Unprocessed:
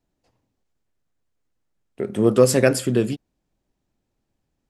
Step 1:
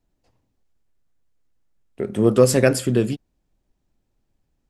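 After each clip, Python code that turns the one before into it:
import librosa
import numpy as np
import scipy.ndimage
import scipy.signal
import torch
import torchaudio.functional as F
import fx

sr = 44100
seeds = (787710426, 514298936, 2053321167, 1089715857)

y = fx.low_shelf(x, sr, hz=65.0, db=9.5)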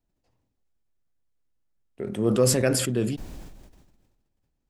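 y = fx.sustainer(x, sr, db_per_s=40.0)
y = y * 10.0 ** (-7.5 / 20.0)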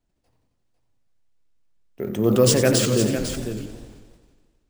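y = x + 10.0 ** (-9.0 / 20.0) * np.pad(x, (int(501 * sr / 1000.0), 0))[:len(x)]
y = np.repeat(y[::3], 3)[:len(y)]
y = fx.echo_warbled(y, sr, ms=88, feedback_pct=67, rate_hz=2.8, cents=164, wet_db=-11)
y = y * 10.0 ** (3.5 / 20.0)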